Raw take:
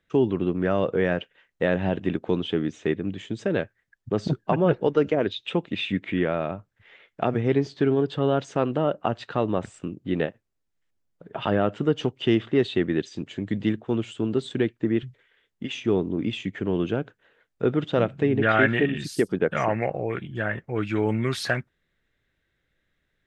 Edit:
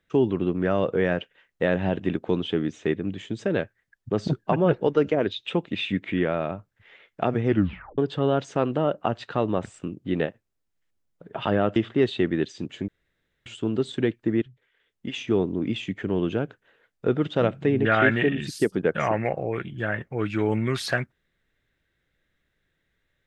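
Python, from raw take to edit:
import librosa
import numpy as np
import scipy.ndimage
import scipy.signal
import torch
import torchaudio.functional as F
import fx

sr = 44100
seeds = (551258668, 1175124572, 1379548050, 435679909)

y = fx.edit(x, sr, fx.tape_stop(start_s=7.47, length_s=0.51),
    fx.cut(start_s=11.76, length_s=0.57),
    fx.room_tone_fill(start_s=13.45, length_s=0.58),
    fx.fade_in_from(start_s=14.99, length_s=0.72, floor_db=-14.5), tone=tone)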